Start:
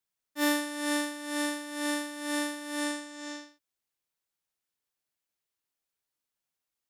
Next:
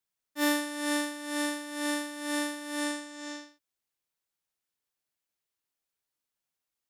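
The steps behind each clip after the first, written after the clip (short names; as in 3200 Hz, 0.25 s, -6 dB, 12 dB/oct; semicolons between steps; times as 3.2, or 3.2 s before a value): nothing audible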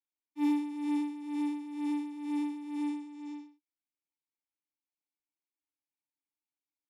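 vowel filter u; high shelf 5300 Hz +12 dB; LFO notch sine 7.8 Hz 560–6900 Hz; gain +2.5 dB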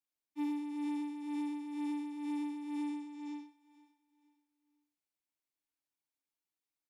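compressor 6:1, threshold -34 dBFS, peak gain reduction 8.5 dB; feedback echo 0.478 s, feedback 34%, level -19 dB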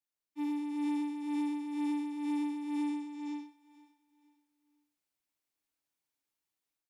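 AGC gain up to 6.5 dB; gain -2.5 dB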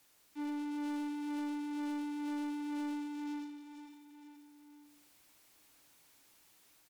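echo 0.171 s -15.5 dB; one-sided clip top -33.5 dBFS; power-law curve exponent 0.5; gain -5.5 dB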